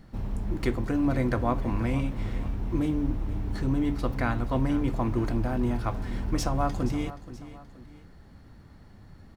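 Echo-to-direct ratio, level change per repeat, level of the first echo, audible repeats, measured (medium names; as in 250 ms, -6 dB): -14.5 dB, -7.0 dB, -15.5 dB, 2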